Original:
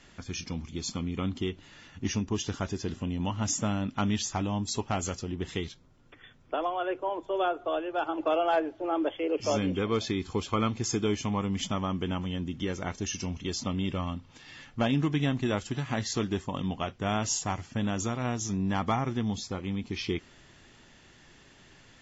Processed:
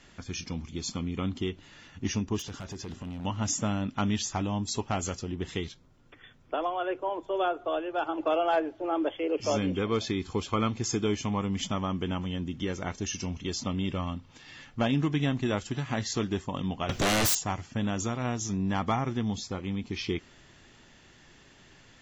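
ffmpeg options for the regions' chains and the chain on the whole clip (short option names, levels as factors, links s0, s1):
-filter_complex "[0:a]asettb=1/sr,asplit=3[s0][s1][s2];[s0]atrim=end=2.394[s3];[s1]atrim=start=2.39:end=3.25,asetpts=PTS-STARTPTS,afade=t=in:d=0.004:c=qsin,afade=t=out:st=0.856:d=0.004:c=qsin,acompressor=threshold=0.0251:ratio=10:attack=3.2:release=140:knee=1:detection=peak,aeval=exprs='0.0251*(abs(mod(val(0)/0.0251+3,4)-2)-1)':c=same[s4];[s2]atrim=start=3.246[s5];[s3][s4]acrossfade=d=0.004:c1=hsin:c2=qsin[s6];[s6][s5]acrossfade=d=0.004:c1=qsin:c2=hsin,asettb=1/sr,asplit=3[s7][s8][s9];[s7]atrim=end=16.894[s10];[s8]atrim=start=16.89:end=17.35,asetpts=PTS-STARTPTS,afade=t=in:d=0.004:c=qsin,afade=t=out:st=0.456:d=0.004:c=qsin,highshelf=f=5000:g=12,acompressor=threshold=0.0355:ratio=8:attack=3.2:release=140:knee=1:detection=peak,aeval=exprs='0.0841*sin(PI/2*5.62*val(0)/0.0841)':c=same[s11];[s9]atrim=start=17.346[s12];[s10][s11]acrossfade=d=0.004:c1=hsin:c2=qsin[s13];[s13][s12]acrossfade=d=0.004:c1=qsin:c2=hsin"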